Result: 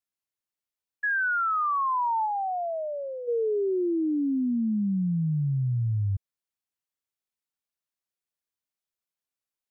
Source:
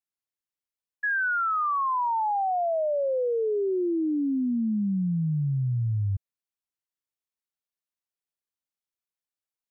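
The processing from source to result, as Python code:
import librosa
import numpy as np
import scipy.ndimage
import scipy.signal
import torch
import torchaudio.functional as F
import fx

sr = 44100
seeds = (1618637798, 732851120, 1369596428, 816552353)

y = fx.peak_eq(x, sr, hz=440.0, db=-12.0, octaves=0.92, at=(2.25, 3.27), fade=0.02)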